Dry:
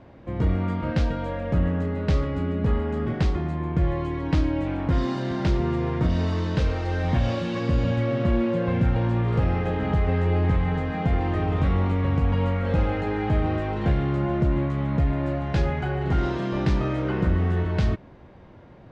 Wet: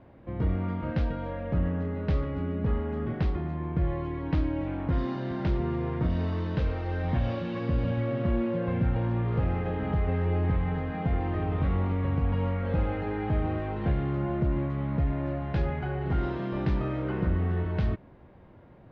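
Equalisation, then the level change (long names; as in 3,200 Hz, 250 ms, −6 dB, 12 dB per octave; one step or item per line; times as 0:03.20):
high-frequency loss of the air 210 metres
−4.5 dB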